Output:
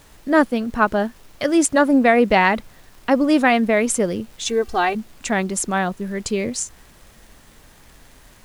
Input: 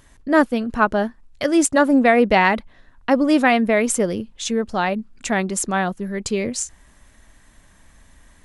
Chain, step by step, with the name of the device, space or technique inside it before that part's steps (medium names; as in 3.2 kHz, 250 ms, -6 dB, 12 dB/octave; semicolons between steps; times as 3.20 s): vinyl LP (crackle; pink noise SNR 31 dB); 4.46–4.95 s: comb 2.6 ms, depth 78%